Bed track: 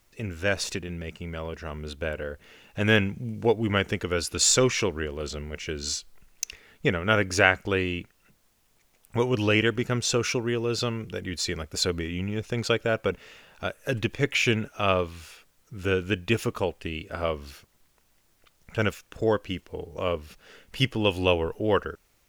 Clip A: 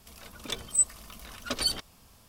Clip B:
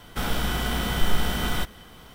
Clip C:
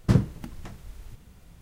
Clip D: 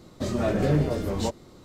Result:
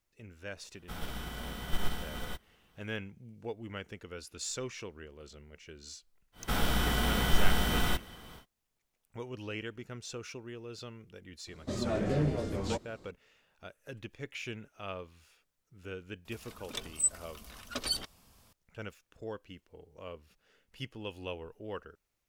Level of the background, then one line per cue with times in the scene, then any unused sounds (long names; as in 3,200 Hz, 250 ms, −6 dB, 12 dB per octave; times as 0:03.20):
bed track −17.5 dB
0:00.72: mix in B −8 dB + expander for the loud parts, over −37 dBFS
0:06.32: mix in B −3 dB, fades 0.10 s
0:11.47: mix in D −7 dB + low-pass filter 11,000 Hz 24 dB per octave
0:16.25: mix in A −5 dB
not used: C